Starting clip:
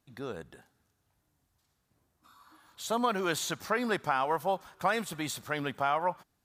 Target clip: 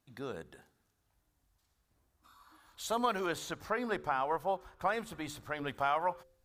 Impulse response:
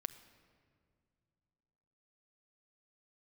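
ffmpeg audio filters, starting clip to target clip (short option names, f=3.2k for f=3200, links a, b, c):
-filter_complex "[0:a]asettb=1/sr,asplit=3[a][b][c];[a]atrim=end=3.264[d];[b]atrim=start=3.26:end=5.68,asetpts=PTS-STARTPTS,afade=t=in:d=0.004:c=qsin,afade=t=out:st=2.416:d=0.004:c=qsin,highshelf=f=2.3k:g=-9[e];[c]atrim=start=5.676[f];[d][e]acrossfade=d=0.004:c1=hsin:c2=qsin[g];[g][f]acrossfade=d=0.004:c1=qsin:c2=hsin,bandreject=f=74.48:t=h:w=4,bandreject=f=148.96:t=h:w=4,bandreject=f=223.44:t=h:w=4,bandreject=f=297.92:t=h:w=4,bandreject=f=372.4:t=h:w=4,bandreject=f=446.88:t=h:w=4,bandreject=f=521.36:t=h:w=4,asubboost=boost=10:cutoff=53,volume=-2dB"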